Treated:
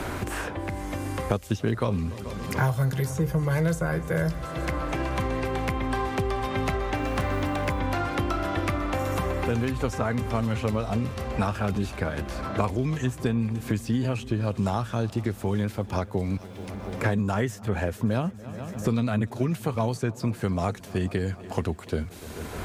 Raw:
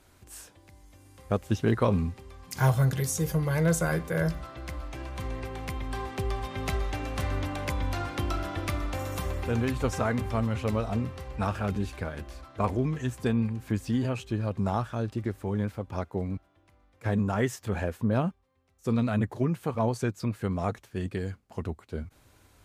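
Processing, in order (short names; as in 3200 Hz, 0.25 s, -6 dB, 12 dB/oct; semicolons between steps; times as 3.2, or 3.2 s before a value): multi-head echo 0.144 s, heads second and third, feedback 56%, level -24 dB; 6.97–7.8 modulation noise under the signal 32 dB; three-band squash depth 100%; gain +1.5 dB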